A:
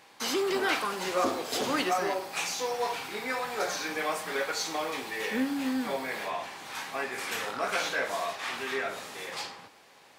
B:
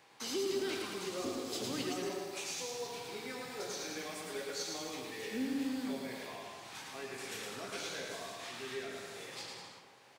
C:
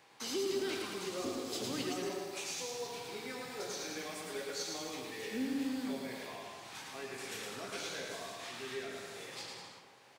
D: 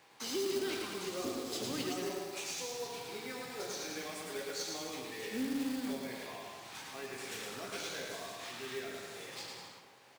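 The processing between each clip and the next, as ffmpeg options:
ffmpeg -i in.wav -filter_complex "[0:a]equalizer=frequency=125:width_type=o:width=0.33:gain=7,equalizer=frequency=400:width_type=o:width=0.33:gain=4,equalizer=frequency=12500:width_type=o:width=0.33:gain=-6,aecho=1:1:110|198|268.4|324.7|369.8:0.631|0.398|0.251|0.158|0.1,acrossover=split=400|3000[link_01][link_02][link_03];[link_02]acompressor=threshold=-45dB:ratio=2.5[link_04];[link_01][link_04][link_03]amix=inputs=3:normalize=0,volume=-7dB" out.wav
ffmpeg -i in.wav -af anull out.wav
ffmpeg -i in.wav -af "acrusher=bits=3:mode=log:mix=0:aa=0.000001" out.wav

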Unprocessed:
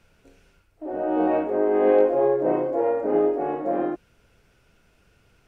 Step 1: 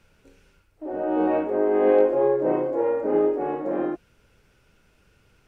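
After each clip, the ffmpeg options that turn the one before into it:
ffmpeg -i in.wav -af "bandreject=frequency=690:width=12" out.wav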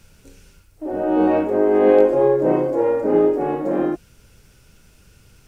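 ffmpeg -i in.wav -af "bass=frequency=250:gain=7,treble=frequency=4000:gain=12,volume=4dB" out.wav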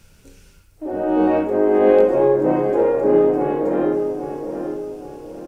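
ffmpeg -i in.wav -filter_complex "[0:a]asplit=2[link_01][link_02];[link_02]adelay=816,lowpass=frequency=2000:poles=1,volume=-7dB,asplit=2[link_03][link_04];[link_04]adelay=816,lowpass=frequency=2000:poles=1,volume=0.43,asplit=2[link_05][link_06];[link_06]adelay=816,lowpass=frequency=2000:poles=1,volume=0.43,asplit=2[link_07][link_08];[link_08]adelay=816,lowpass=frequency=2000:poles=1,volume=0.43,asplit=2[link_09][link_10];[link_10]adelay=816,lowpass=frequency=2000:poles=1,volume=0.43[link_11];[link_01][link_03][link_05][link_07][link_09][link_11]amix=inputs=6:normalize=0" out.wav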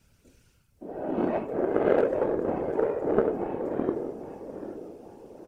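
ffmpeg -i in.wav -af "afftfilt=real='hypot(re,im)*cos(2*PI*random(0))':imag='hypot(re,im)*sin(2*PI*random(1))':win_size=512:overlap=0.75,aeval=exprs='0.422*(cos(1*acos(clip(val(0)/0.422,-1,1)))-cos(1*PI/2))+0.0841*(cos(3*acos(clip(val(0)/0.422,-1,1)))-cos(3*PI/2))':channel_layout=same,volume=1.5dB" out.wav

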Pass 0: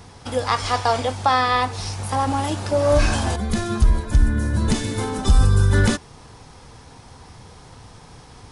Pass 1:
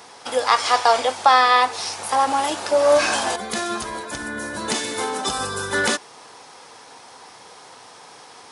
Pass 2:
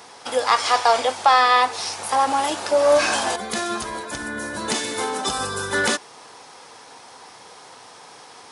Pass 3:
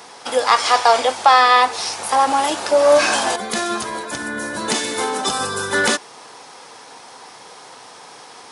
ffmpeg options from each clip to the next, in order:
ffmpeg -i in.wav -af "highpass=480,volume=4.5dB" out.wav
ffmpeg -i in.wav -af "asoftclip=type=tanh:threshold=-3.5dB" out.wav
ffmpeg -i in.wav -af "highpass=110,volume=3.5dB" out.wav

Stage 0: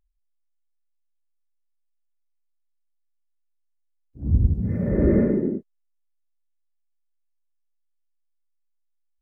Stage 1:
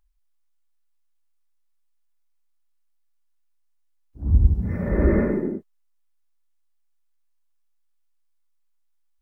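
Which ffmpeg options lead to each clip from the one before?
ffmpeg -i in.wav -af "equalizer=frequency=125:width_type=o:width=1:gain=-10,equalizer=frequency=250:width_type=o:width=1:gain=-6,equalizer=frequency=500:width_type=o:width=1:gain=-7,equalizer=frequency=1000:width_type=o:width=1:gain=5,volume=6dB" out.wav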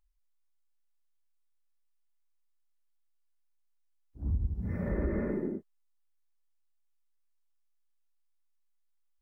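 ffmpeg -i in.wav -af "acompressor=threshold=-21dB:ratio=5,volume=-6.5dB" out.wav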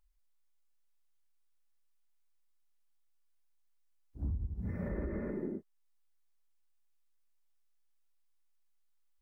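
ffmpeg -i in.wav -af "alimiter=level_in=6dB:limit=-24dB:level=0:latency=1:release=470,volume=-6dB,volume=1.5dB" out.wav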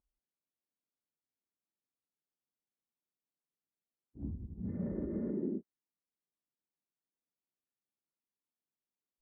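ffmpeg -i in.wav -af "bandpass=frequency=250:width_type=q:width=1.2:csg=0,volume=4dB" out.wav

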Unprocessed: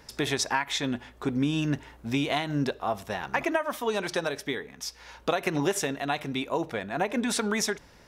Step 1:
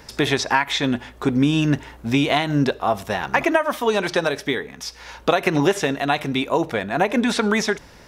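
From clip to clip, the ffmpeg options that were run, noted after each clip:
ffmpeg -i in.wav -filter_complex "[0:a]acrossover=split=4800[link_01][link_02];[link_02]acompressor=threshold=-44dB:ratio=4:attack=1:release=60[link_03];[link_01][link_03]amix=inputs=2:normalize=0,volume=8.5dB" out.wav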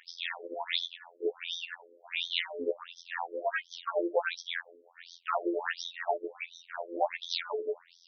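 ffmpeg -i in.wav -af "tremolo=f=7.2:d=0.41,afftfilt=real='hypot(re,im)*cos(PI*b)':imag='0':win_size=2048:overlap=0.75,afftfilt=real='re*between(b*sr/1024,390*pow(4600/390,0.5+0.5*sin(2*PI*1.4*pts/sr))/1.41,390*pow(4600/390,0.5+0.5*sin(2*PI*1.4*pts/sr))*1.41)':imag='im*between(b*sr/1024,390*pow(4600/390,0.5+0.5*sin(2*PI*1.4*pts/sr))/1.41,390*pow(4600/390,0.5+0.5*sin(2*PI*1.4*pts/sr))*1.41)':win_size=1024:overlap=0.75" out.wav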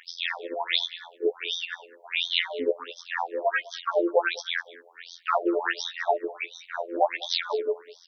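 ffmpeg -i in.wav -af "aecho=1:1:202:0.0891,volume=6.5dB" out.wav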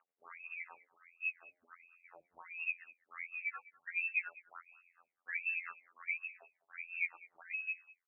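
ffmpeg -i in.wav -af "lowpass=frequency=2600:width_type=q:width=0.5098,lowpass=frequency=2600:width_type=q:width=0.6013,lowpass=frequency=2600:width_type=q:width=0.9,lowpass=frequency=2600:width_type=q:width=2.563,afreqshift=-3000,crystalizer=i=2.5:c=0,aderivative,volume=-7.5dB" out.wav

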